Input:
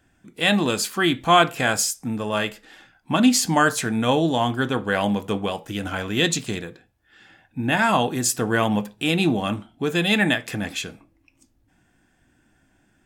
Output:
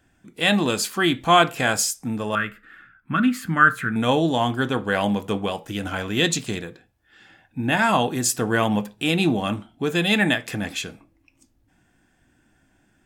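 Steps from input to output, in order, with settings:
0:02.35–0:03.96: drawn EQ curve 180 Hz 0 dB, 880 Hz −16 dB, 1,300 Hz +9 dB, 5,600 Hz −22 dB, 15,000 Hz −7 dB

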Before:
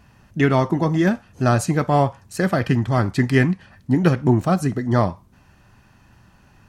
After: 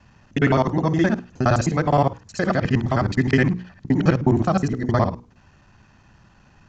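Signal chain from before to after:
reversed piece by piece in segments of 52 ms
downsampling to 16,000 Hz
mains-hum notches 60/120/180/240/300/360/420/480 Hz

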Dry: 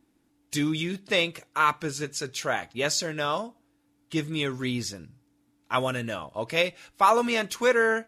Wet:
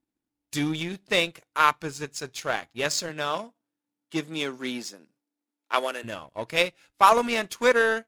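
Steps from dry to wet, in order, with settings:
power curve on the samples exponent 1.4
0:03.08–0:06.03: high-pass filter 110 Hz → 330 Hz 24 dB per octave
level +5 dB

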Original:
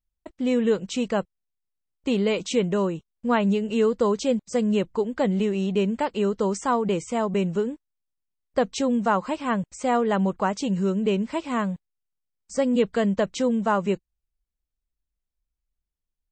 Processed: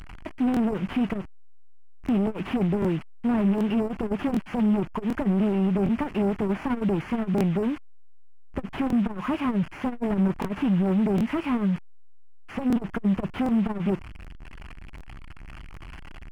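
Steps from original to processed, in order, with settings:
linear delta modulator 16 kbit/s, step −39.5 dBFS
leveller curve on the samples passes 2
parametric band 500 Hz −10 dB 0.51 octaves
regular buffer underruns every 0.76 s, samples 1,024, repeat, from 0:00.52
saturating transformer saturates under 120 Hz

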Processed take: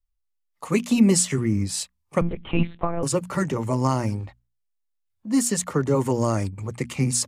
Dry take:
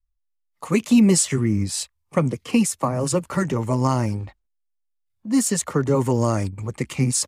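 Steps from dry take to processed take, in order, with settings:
mains-hum notches 60/120/180/240 Hz
0:02.21–0:03.03: one-pitch LPC vocoder at 8 kHz 170 Hz
level −1.5 dB

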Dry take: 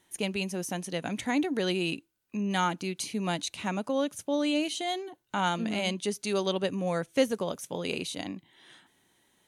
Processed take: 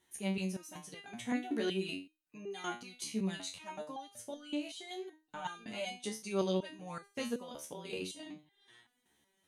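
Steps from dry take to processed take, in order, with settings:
0:04.36–0:05.45: downward compressor 4 to 1, threshold −32 dBFS, peak gain reduction 7.5 dB
step-sequenced resonator 5.3 Hz 73–400 Hz
level +2 dB

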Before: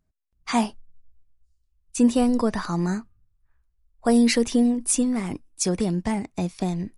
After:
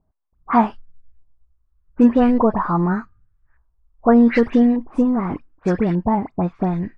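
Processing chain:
high-shelf EQ 7,000 Hz −6.5 dB
all-pass dispersion highs, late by 72 ms, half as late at 2,300 Hz
auto-filter low-pass saw up 0.84 Hz 880–1,900 Hz
level +5 dB

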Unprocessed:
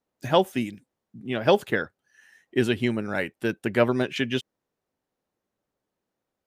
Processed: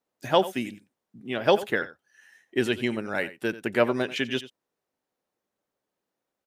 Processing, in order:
low-shelf EQ 170 Hz −10.5 dB
on a send: single-tap delay 89 ms −16 dB

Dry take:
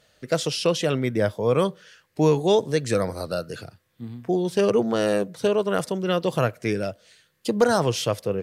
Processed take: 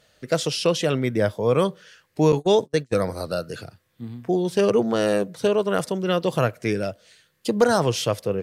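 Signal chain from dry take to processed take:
0:02.32–0:02.96: noise gate −23 dBFS, range −41 dB
level +1 dB

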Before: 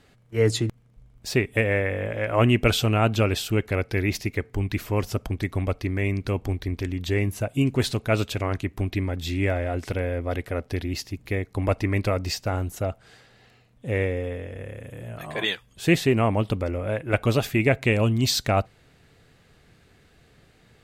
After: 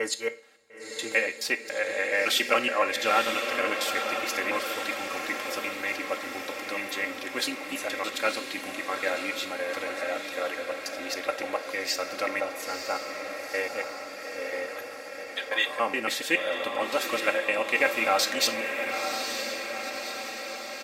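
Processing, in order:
slices reordered back to front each 141 ms, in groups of 4
high-pass filter 610 Hz 12 dB per octave
parametric band 1,600 Hz +2.5 dB
comb filter 3.7 ms, depth 75%
on a send: feedback delay with all-pass diffusion 947 ms, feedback 64%, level −6 dB
on the sum: coupled-rooms reverb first 0.4 s, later 2.2 s, from −22 dB, DRR 9.5 dB
level −2 dB

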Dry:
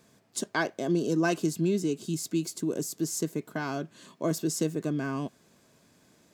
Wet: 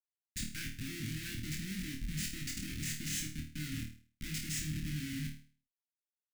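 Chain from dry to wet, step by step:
comparator with hysteresis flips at −34.5 dBFS
elliptic band-stop filter 250–1,900 Hz, stop band 70 dB
flutter between parallel walls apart 4.5 metres, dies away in 0.41 s
level −6 dB

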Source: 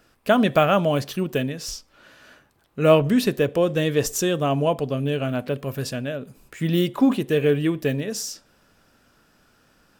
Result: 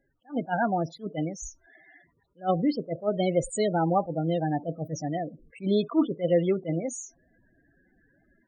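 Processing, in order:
automatic gain control gain up to 7 dB
speed change +18%
spectral peaks only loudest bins 16
level that may rise only so fast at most 300 dB per second
level −8 dB

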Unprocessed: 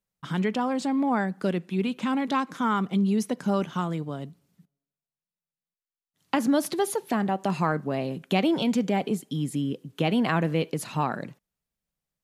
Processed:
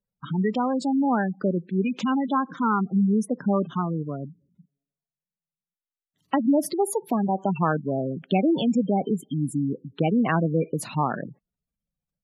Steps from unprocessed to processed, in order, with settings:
0:01.67–0:02.19: parametric band 5,600 Hz +3 dB → +14.5 dB 2.1 octaves
gate on every frequency bin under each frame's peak −15 dB strong
level +2.5 dB

